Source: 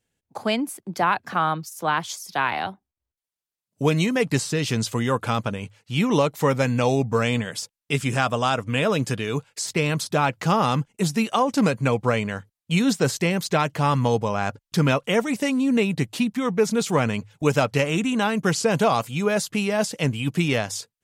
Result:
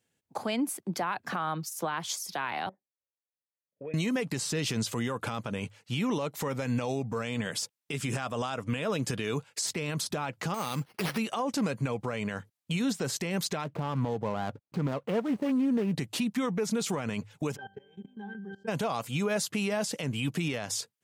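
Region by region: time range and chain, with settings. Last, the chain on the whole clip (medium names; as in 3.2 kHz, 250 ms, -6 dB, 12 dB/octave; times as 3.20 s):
2.69–3.94 s: cascade formant filter e + compression 3:1, threshold -38 dBFS
10.54–11.18 s: treble shelf 2.8 kHz +11 dB + compression 2:1, threshold -30 dBFS + careless resampling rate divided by 6×, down none, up hold
13.64–15.95 s: median filter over 25 samples + treble shelf 3.6 kHz -7.5 dB
17.55–18.67 s: pitch-class resonator G, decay 0.34 s + level held to a coarse grid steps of 20 dB + mains buzz 50 Hz, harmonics 12, -76 dBFS -1 dB/octave
whole clip: high-pass 110 Hz 12 dB/octave; compression, threshold -23 dBFS; peak limiter -21.5 dBFS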